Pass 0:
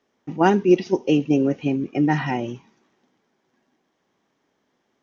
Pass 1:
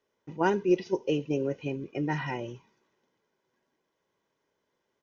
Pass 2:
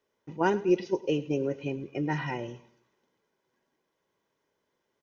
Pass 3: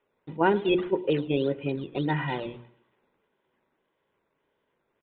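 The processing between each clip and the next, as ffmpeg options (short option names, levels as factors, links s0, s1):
-af "aecho=1:1:2:0.5,volume=0.376"
-af "aecho=1:1:106|212|318:0.112|0.0438|0.0171"
-af "acrusher=samples=10:mix=1:aa=0.000001:lfo=1:lforange=10:lforate=1.7,aresample=8000,aresample=44100,bandreject=f=60:t=h:w=6,bandreject=f=120:t=h:w=6,bandreject=f=180:t=h:w=6,bandreject=f=240:t=h:w=6,bandreject=f=300:t=h:w=6,bandreject=f=360:t=h:w=6,volume=1.5"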